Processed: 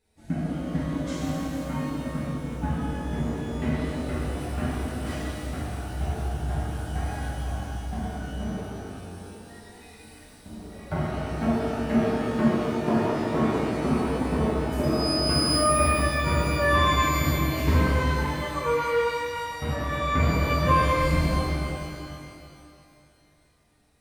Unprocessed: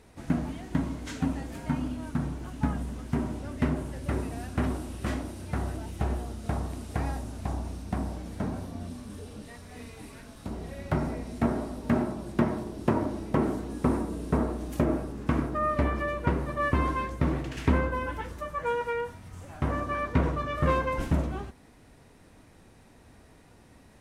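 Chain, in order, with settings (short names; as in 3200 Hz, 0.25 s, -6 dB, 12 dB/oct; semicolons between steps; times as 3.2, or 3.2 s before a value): per-bin expansion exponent 1.5; 14.83–15.44 whine 5000 Hz -36 dBFS; shimmer reverb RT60 2.5 s, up +12 st, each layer -8 dB, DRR -9 dB; gain -2.5 dB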